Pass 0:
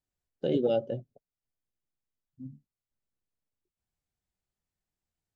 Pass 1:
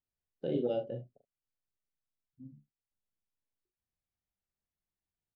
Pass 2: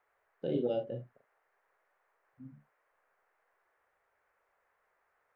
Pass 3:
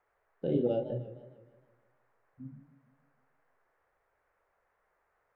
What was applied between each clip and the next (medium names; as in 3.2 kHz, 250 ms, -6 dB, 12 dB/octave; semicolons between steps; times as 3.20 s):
distance through air 140 m; on a send: early reflections 41 ms -6 dB, 74 ms -17.5 dB; on the sum: trim -6.5 dB
band noise 420–1900 Hz -77 dBFS
tilt EQ -2 dB/octave; modulated delay 154 ms, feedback 51%, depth 144 cents, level -13.5 dB